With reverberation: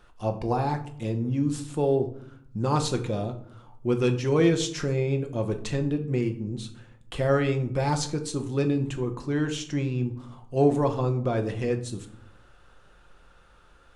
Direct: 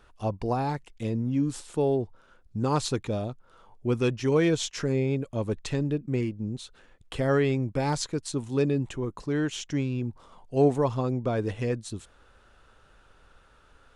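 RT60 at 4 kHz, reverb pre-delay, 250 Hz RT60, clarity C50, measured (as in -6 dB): 0.35 s, 6 ms, 1.0 s, 12.5 dB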